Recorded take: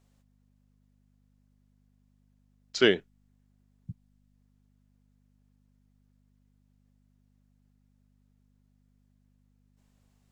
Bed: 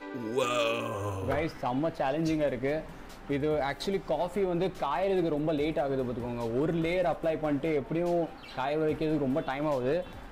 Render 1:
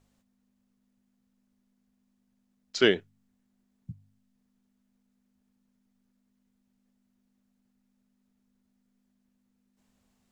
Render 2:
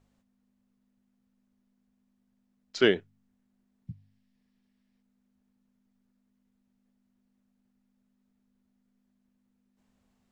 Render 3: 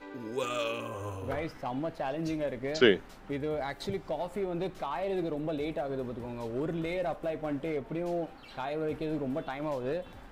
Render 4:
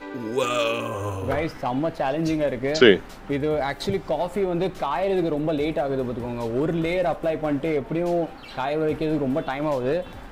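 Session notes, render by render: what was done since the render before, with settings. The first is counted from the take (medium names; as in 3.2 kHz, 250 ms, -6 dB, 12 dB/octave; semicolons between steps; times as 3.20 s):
de-hum 50 Hz, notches 3
treble shelf 4 kHz -7.5 dB; 3.87–5.01 s: time-frequency box 1.6–5.8 kHz +7 dB
add bed -4.5 dB
trim +9.5 dB; peak limiter -2 dBFS, peak gain reduction 3 dB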